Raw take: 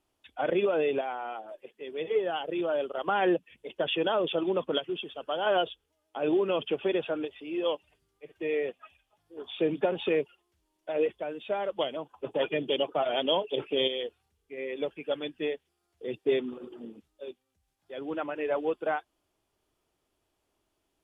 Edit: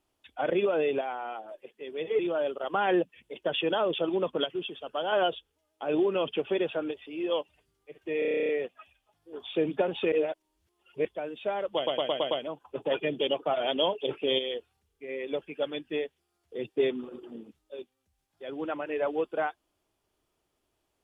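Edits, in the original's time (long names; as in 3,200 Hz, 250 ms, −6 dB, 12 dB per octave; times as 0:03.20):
0:02.19–0:02.53: remove
0:08.53: stutter 0.03 s, 11 plays
0:10.16–0:11.09: reverse
0:11.80: stutter 0.11 s, 6 plays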